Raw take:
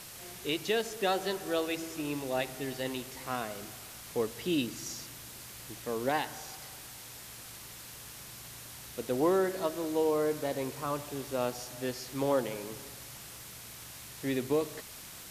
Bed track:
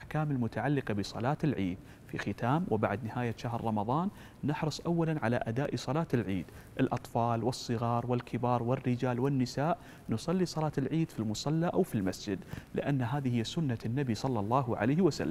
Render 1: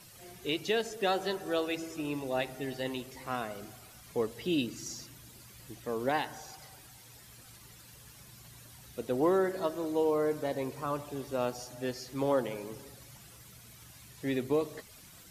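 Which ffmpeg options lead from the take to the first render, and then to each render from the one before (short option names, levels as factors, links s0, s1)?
-af "afftdn=nr=11:nf=-48"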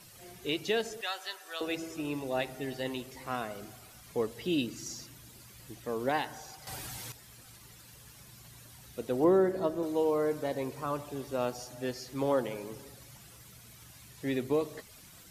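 -filter_complex "[0:a]asettb=1/sr,asplit=3[s0][s1][s2];[s0]atrim=end=1.014[s3];[s1]atrim=start=1.01:end=1.61,asetpts=PTS-STARTPTS,afade=t=in:d=0.004:c=qsin,afade=t=out:st=0.596:d=0.004:c=qsin,highpass=1300[s4];[s2]atrim=start=1.606[s5];[s3][s4]acrossfade=d=0.004:c1=hsin:c2=qsin[s6];[s6][s5]acrossfade=d=0.004:c1=qsin:c2=hsin,asettb=1/sr,asplit=3[s7][s8][s9];[s7]atrim=end=9.244[s10];[s8]atrim=start=9.24:end=9.83,asetpts=PTS-STARTPTS,afade=t=in:d=0.004:c=qsin,afade=t=out:st=0.586:d=0.004:c=qsin,tiltshelf=f=790:g=5.5[s11];[s9]atrim=start=9.826[s12];[s10][s11]acrossfade=d=0.004:c1=hsin:c2=qsin[s13];[s13][s12]acrossfade=d=0.004:c1=qsin:c2=hsin,asplit=3[s14][s15][s16];[s14]atrim=end=6.672[s17];[s15]atrim=start=6.668:end=7.122,asetpts=PTS-STARTPTS,volume=3.76[s18];[s16]atrim=start=7.118[s19];[s17][s18]acrossfade=d=0.004:c1=hsin:c2=hsin[s20];[s20][s19]acrossfade=d=0.004:c1=hsin:c2=hsin"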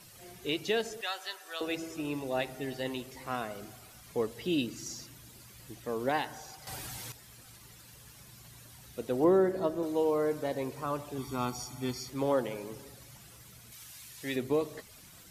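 -filter_complex "[0:a]asettb=1/sr,asplit=3[s0][s1][s2];[s0]atrim=end=11.184[s3];[s1]atrim=start=11.18:end=12.1,asetpts=PTS-STARTPTS,afade=t=in:d=0.004:c=qsin,afade=t=out:st=0.916:d=0.004:c=qsin,aecho=1:1:0.9:0.92,atrim=end_sample=40572[s4];[s2]atrim=start=12.096[s5];[s3][s4]acrossfade=d=0.004:c1=hsin:c2=qsin[s6];[s6][s5]acrossfade=d=0.004:c1=qsin:c2=hsin,asettb=1/sr,asplit=3[s7][s8][s9];[s7]atrim=end=13.724[s10];[s8]atrim=start=13.72:end=14.36,asetpts=PTS-STARTPTS,afade=t=in:d=0.004:c=qsin,afade=t=out:st=0.636:d=0.004:c=qsin,tiltshelf=f=1200:g=-6[s11];[s9]atrim=start=14.356[s12];[s10][s11]acrossfade=d=0.004:c1=hsin:c2=qsin[s13];[s13][s12]acrossfade=d=0.004:c1=qsin:c2=hsin"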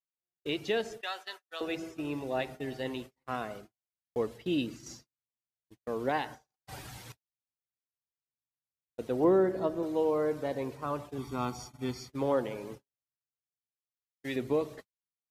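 -af "agate=range=0.00178:threshold=0.00794:ratio=16:detection=peak,highshelf=f=5500:g=-10.5"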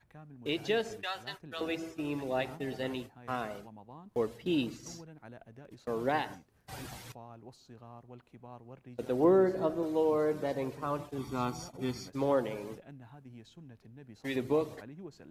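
-filter_complex "[1:a]volume=0.1[s0];[0:a][s0]amix=inputs=2:normalize=0"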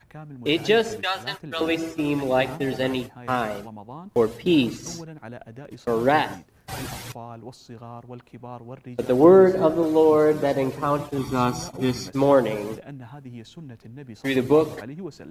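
-af "volume=3.76"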